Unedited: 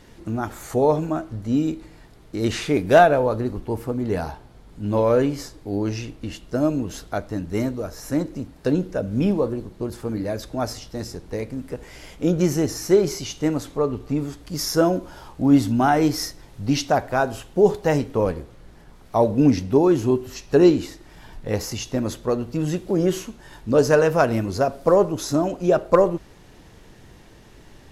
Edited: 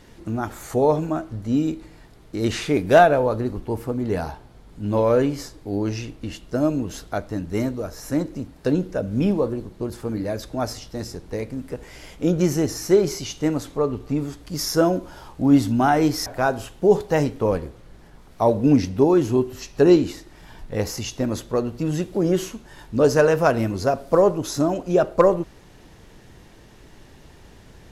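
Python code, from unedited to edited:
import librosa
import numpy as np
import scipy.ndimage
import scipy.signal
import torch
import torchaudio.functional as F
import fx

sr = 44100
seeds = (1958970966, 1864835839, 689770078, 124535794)

y = fx.edit(x, sr, fx.cut(start_s=16.26, length_s=0.74), tone=tone)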